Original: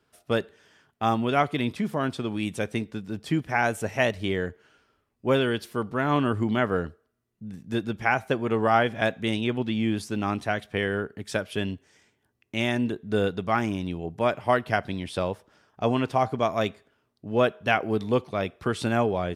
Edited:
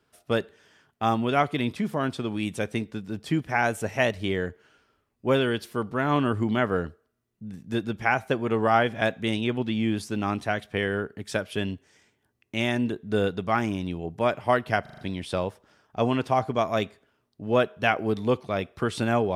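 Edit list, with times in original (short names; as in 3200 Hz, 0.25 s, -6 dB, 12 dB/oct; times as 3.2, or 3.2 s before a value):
14.82 stutter 0.04 s, 5 plays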